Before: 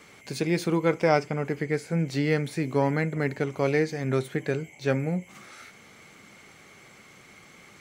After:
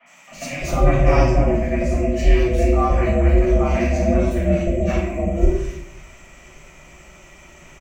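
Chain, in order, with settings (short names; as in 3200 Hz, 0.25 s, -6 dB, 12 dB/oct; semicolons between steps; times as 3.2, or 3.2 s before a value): ripple EQ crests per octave 0.73, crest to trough 13 dB; three bands offset in time mids, highs, lows 60/310 ms, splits 520/2600 Hz; ring modulator 210 Hz; shoebox room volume 160 m³, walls mixed, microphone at 5.5 m; gain -7.5 dB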